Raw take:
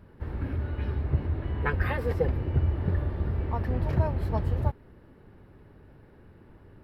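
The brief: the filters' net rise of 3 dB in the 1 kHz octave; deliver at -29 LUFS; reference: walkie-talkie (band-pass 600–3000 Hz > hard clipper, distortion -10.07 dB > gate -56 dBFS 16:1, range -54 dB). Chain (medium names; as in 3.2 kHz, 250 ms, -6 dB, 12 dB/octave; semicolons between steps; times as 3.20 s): band-pass 600–3000 Hz; peaking EQ 1 kHz +4.5 dB; hard clipper -28.5 dBFS; gate -56 dBFS 16:1, range -54 dB; trim +10 dB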